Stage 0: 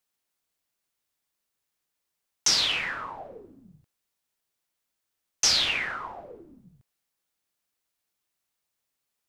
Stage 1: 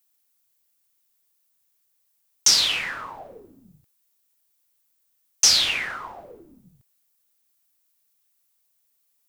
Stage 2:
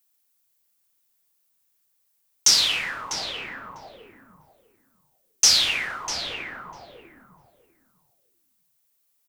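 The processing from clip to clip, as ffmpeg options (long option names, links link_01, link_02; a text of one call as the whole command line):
ffmpeg -i in.wav -af "aemphasis=mode=production:type=50kf" out.wav
ffmpeg -i in.wav -filter_complex "[0:a]asplit=2[link_01][link_02];[link_02]adelay=648,lowpass=frequency=1500:poles=1,volume=-3dB,asplit=2[link_03][link_04];[link_04]adelay=648,lowpass=frequency=1500:poles=1,volume=0.19,asplit=2[link_05][link_06];[link_06]adelay=648,lowpass=frequency=1500:poles=1,volume=0.19[link_07];[link_01][link_03][link_05][link_07]amix=inputs=4:normalize=0" out.wav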